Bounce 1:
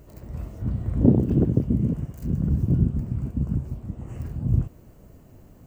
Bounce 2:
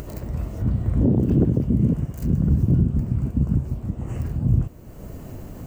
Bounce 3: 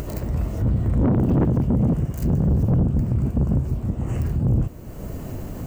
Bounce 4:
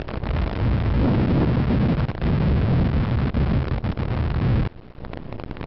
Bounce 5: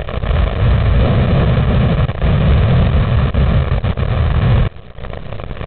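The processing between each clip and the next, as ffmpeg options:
ffmpeg -i in.wav -filter_complex "[0:a]asplit=2[link_01][link_02];[link_02]acompressor=mode=upward:threshold=-24dB:ratio=2.5,volume=2dB[link_03];[link_01][link_03]amix=inputs=2:normalize=0,alimiter=level_in=6dB:limit=-1dB:release=50:level=0:latency=1,volume=-8.5dB" out.wav
ffmpeg -i in.wav -af "asoftclip=type=tanh:threshold=-19.5dB,volume=5dB" out.wav
ffmpeg -i in.wav -af "aresample=11025,acrusher=bits=5:dc=4:mix=0:aa=0.000001,aresample=44100,lowpass=2900" out.wav
ffmpeg -i in.wav -af "aecho=1:1:1.7:0.86,aresample=8000,acrusher=bits=3:mode=log:mix=0:aa=0.000001,aresample=44100,volume=4.5dB" out.wav

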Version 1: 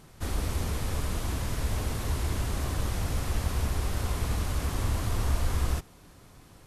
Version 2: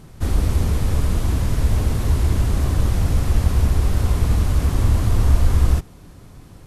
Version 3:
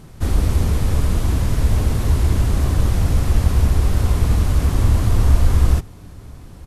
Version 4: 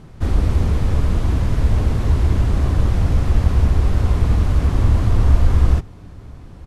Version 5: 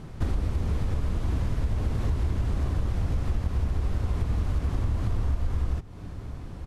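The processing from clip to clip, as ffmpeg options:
ffmpeg -i in.wav -af "lowshelf=frequency=400:gain=9,volume=3.5dB" out.wav
ffmpeg -i in.wav -filter_complex "[0:a]asplit=2[link_01][link_02];[link_02]adelay=991.3,volume=-27dB,highshelf=frequency=4000:gain=-22.3[link_03];[link_01][link_03]amix=inputs=2:normalize=0,volume=1.5dB" out.wav
ffmpeg -i in.wav -af "aemphasis=mode=reproduction:type=50fm" out.wav
ffmpeg -i in.wav -af "acompressor=threshold=-23dB:ratio=6" out.wav

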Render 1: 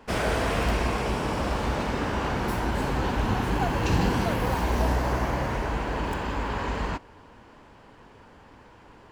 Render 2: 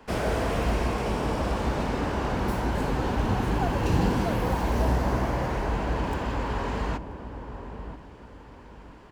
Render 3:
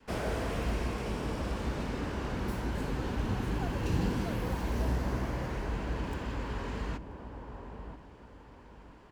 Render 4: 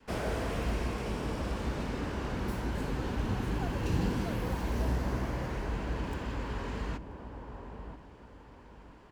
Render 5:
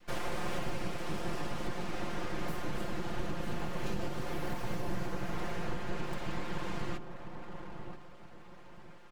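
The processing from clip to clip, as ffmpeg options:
ffmpeg -i in.wav -filter_complex "[0:a]acrossover=split=470|940[link_01][link_02][link_03];[link_03]asoftclip=type=tanh:threshold=-34.5dB[link_04];[link_01][link_02][link_04]amix=inputs=3:normalize=0,asplit=2[link_05][link_06];[link_06]adelay=983,lowpass=frequency=830:poles=1,volume=-8.5dB,asplit=2[link_07][link_08];[link_08]adelay=983,lowpass=frequency=830:poles=1,volume=0.35,asplit=2[link_09][link_10];[link_10]adelay=983,lowpass=frequency=830:poles=1,volume=0.35,asplit=2[link_11][link_12];[link_12]adelay=983,lowpass=frequency=830:poles=1,volume=0.35[link_13];[link_05][link_07][link_09][link_11][link_13]amix=inputs=5:normalize=0" out.wav
ffmpeg -i in.wav -af "adynamicequalizer=threshold=0.00891:dfrequency=780:dqfactor=1.2:tfrequency=780:tqfactor=1.2:attack=5:release=100:ratio=0.375:range=3:mode=cutabove:tftype=bell,volume=-6dB" out.wav
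ffmpeg -i in.wav -af anull out.wav
ffmpeg -i in.wav -af "aeval=exprs='abs(val(0))':channel_layout=same,alimiter=level_in=1.5dB:limit=-24dB:level=0:latency=1:release=295,volume=-1.5dB,aecho=1:1:5.7:0.65" out.wav

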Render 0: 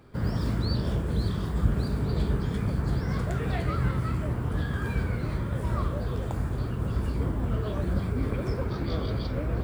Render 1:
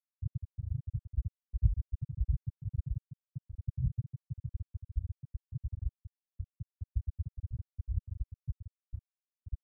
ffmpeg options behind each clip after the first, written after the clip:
ffmpeg -i in.wav -af "afftfilt=real='re*gte(hypot(re,im),0.562)':imag='im*gte(hypot(re,im),0.562)':win_size=1024:overlap=0.75,volume=-1.5dB" out.wav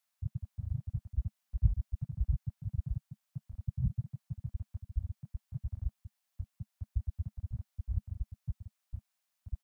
ffmpeg -i in.wav -af "firequalizer=gain_entry='entry(150,0);entry(210,11);entry(330,-9);entry(640,13)':delay=0.05:min_phase=1" out.wav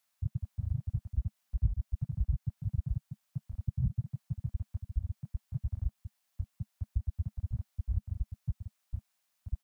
ffmpeg -i in.wav -af "acompressor=threshold=-33dB:ratio=2,volume=4.5dB" out.wav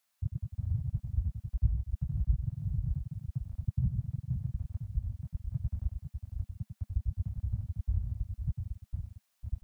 ffmpeg -i in.wav -af "aecho=1:1:98|502:0.447|0.447" out.wav

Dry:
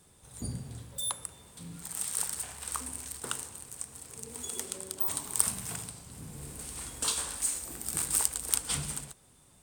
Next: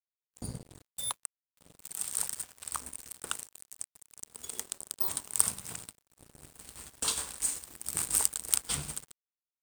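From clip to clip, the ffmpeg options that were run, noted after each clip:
ffmpeg -i in.wav -af "aeval=exprs='sgn(val(0))*max(abs(val(0))-0.01,0)':channel_layout=same,volume=1.5dB" out.wav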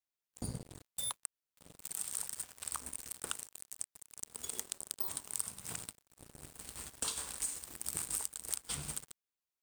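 ffmpeg -i in.wav -af "acompressor=threshold=-35dB:ratio=6,volume=1dB" out.wav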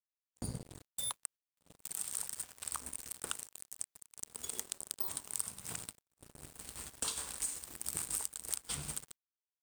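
ffmpeg -i in.wav -af "agate=range=-16dB:threshold=-56dB:ratio=16:detection=peak" out.wav

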